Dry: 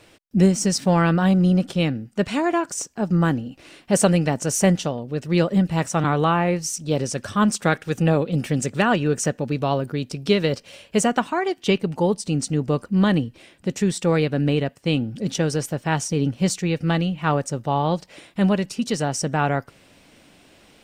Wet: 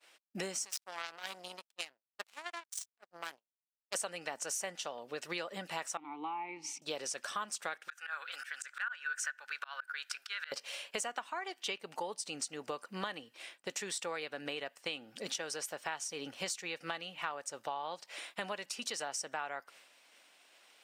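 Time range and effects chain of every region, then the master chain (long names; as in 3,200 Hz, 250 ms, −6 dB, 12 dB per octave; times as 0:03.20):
0:00.65–0:03.95: high-shelf EQ 3,000 Hz +11 dB + power curve on the samples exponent 3 + one half of a high-frequency compander decoder only
0:05.97–0:06.82: formant filter u + low-shelf EQ 220 Hz +8 dB + level that may fall only so fast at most 66 dB per second
0:07.88–0:10.52: high-pass with resonance 1,500 Hz, resonance Q 10 + volume swells 355 ms
whole clip: high-pass filter 830 Hz 12 dB per octave; downward expander −48 dBFS; downward compressor 6 to 1, threshold −38 dBFS; level +1.5 dB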